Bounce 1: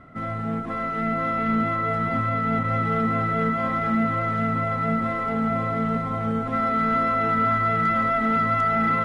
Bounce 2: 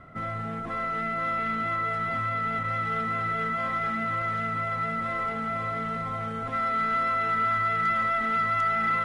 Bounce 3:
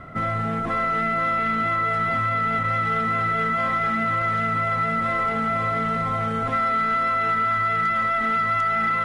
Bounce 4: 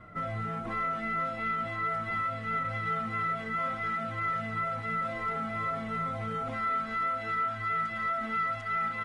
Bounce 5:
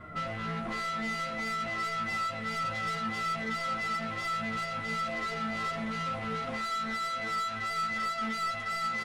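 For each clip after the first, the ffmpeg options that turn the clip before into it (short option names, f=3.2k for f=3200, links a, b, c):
-filter_complex "[0:a]equalizer=f=260:t=o:w=0.73:g=-6,acrossover=split=1300[a][b];[a]alimiter=level_in=4.5dB:limit=-24dB:level=0:latency=1,volume=-4.5dB[c];[c][b]amix=inputs=2:normalize=0"
-af "acompressor=threshold=-28dB:ratio=6,volume=8.5dB"
-filter_complex "[0:a]asplit=2[a][b];[b]adelay=5.9,afreqshift=-2.9[c];[a][c]amix=inputs=2:normalize=1,volume=-6.5dB"
-filter_complex "[0:a]asoftclip=type=tanh:threshold=-35.5dB,asplit=2[a][b];[b]adelay=13,volume=-3dB[c];[a][c]amix=inputs=2:normalize=0,volume=3.5dB"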